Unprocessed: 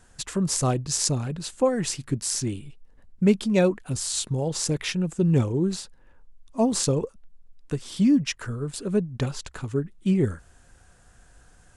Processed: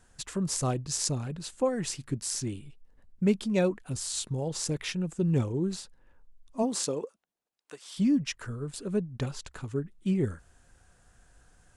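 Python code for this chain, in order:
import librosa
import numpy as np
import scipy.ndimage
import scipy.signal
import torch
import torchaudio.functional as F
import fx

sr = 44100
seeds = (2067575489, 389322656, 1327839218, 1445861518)

y = fx.highpass(x, sr, hz=fx.line((6.62, 200.0), (7.96, 830.0)), slope=12, at=(6.62, 7.96), fade=0.02)
y = y * 10.0 ** (-5.5 / 20.0)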